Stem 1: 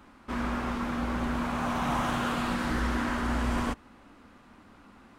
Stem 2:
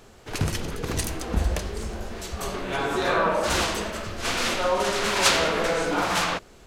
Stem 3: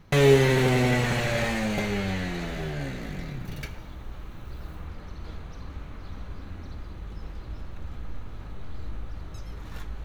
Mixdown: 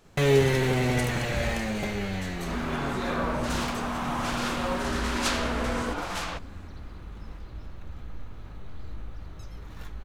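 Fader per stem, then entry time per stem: -1.5, -9.0, -3.0 dB; 2.20, 0.00, 0.05 s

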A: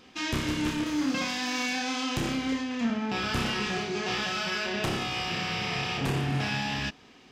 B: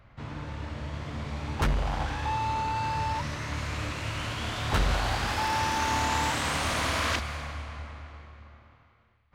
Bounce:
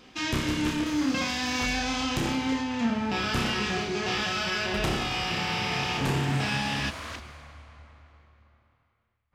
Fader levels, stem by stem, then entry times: +1.5, -10.5 dB; 0.00, 0.00 s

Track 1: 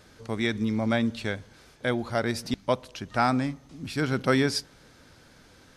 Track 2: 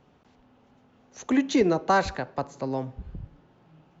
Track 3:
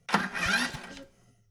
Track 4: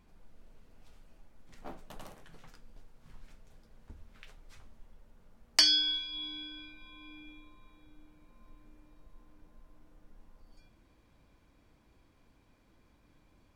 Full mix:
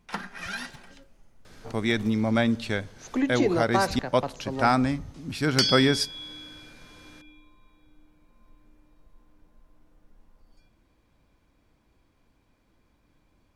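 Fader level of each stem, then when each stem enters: +2.0, -3.0, -8.0, -0.5 dB; 1.45, 1.85, 0.00, 0.00 s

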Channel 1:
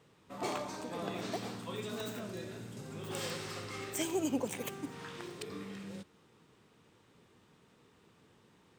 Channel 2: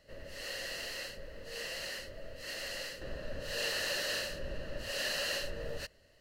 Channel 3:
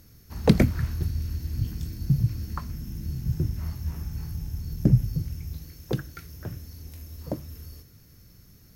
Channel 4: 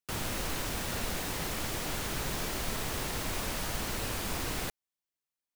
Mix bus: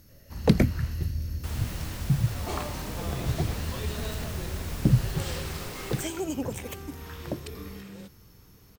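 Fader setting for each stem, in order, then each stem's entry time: +1.5, -12.5, -2.0, -6.0 dB; 2.05, 0.00, 0.00, 1.35 s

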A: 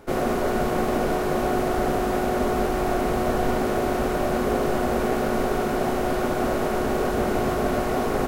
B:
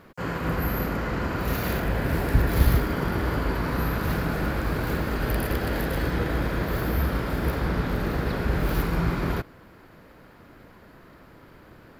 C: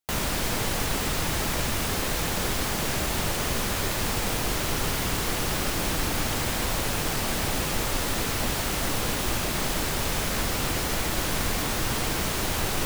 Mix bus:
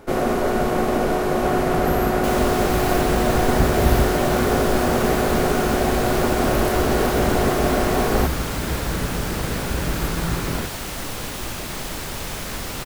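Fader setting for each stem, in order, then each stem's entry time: +3.0, 0.0, -2.5 dB; 0.00, 1.25, 2.15 s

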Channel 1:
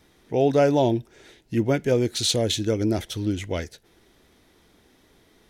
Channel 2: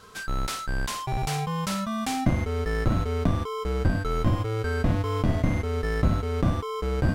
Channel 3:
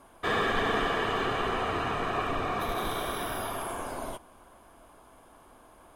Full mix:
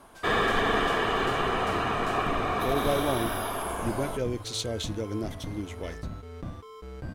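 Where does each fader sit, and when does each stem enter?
-9.5, -14.5, +2.5 dB; 2.30, 0.00, 0.00 s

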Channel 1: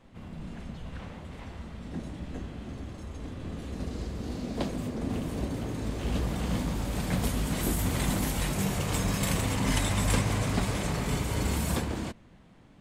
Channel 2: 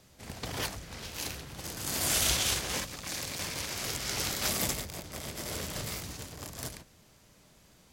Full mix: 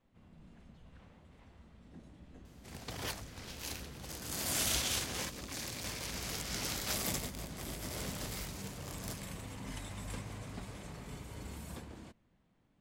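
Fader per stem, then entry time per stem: -17.0, -5.5 dB; 0.00, 2.45 s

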